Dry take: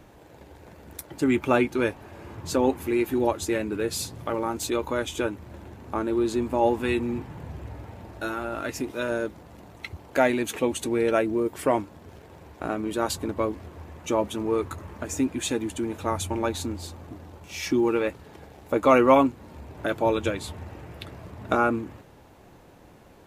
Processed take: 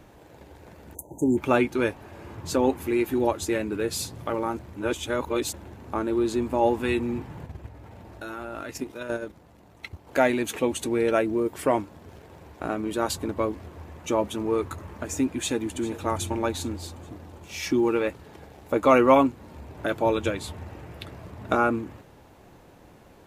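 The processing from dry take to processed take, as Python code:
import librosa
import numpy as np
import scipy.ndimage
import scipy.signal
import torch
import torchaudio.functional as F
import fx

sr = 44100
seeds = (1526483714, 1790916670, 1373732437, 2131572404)

y = fx.spec_erase(x, sr, start_s=0.95, length_s=0.42, low_hz=1000.0, high_hz=6000.0)
y = fx.level_steps(y, sr, step_db=9, at=(7.46, 10.07))
y = fx.echo_throw(y, sr, start_s=15.25, length_s=0.69, ms=400, feedback_pct=60, wet_db=-16.0)
y = fx.edit(y, sr, fx.reverse_span(start_s=4.59, length_s=0.94), tone=tone)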